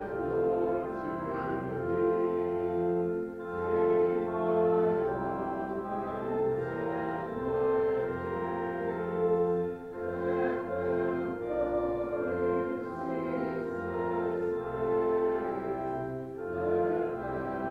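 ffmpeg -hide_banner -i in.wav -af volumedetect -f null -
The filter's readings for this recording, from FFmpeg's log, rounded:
mean_volume: -30.6 dB
max_volume: -16.3 dB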